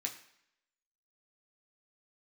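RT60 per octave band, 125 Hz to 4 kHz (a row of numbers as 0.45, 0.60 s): 0.60, 0.70, 0.65, 0.75, 0.80, 0.70 s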